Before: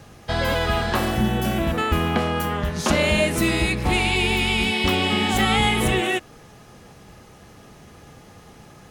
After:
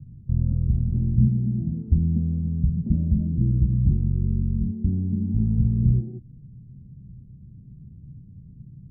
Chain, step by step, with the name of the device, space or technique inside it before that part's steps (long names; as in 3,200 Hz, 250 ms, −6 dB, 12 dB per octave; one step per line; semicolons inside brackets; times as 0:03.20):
0:01.27–0:01.88: high-pass filter 140 Hz 12 dB per octave
the neighbour's flat through the wall (low-pass filter 190 Hz 24 dB per octave; parametric band 130 Hz +6 dB 0.41 octaves)
level +4 dB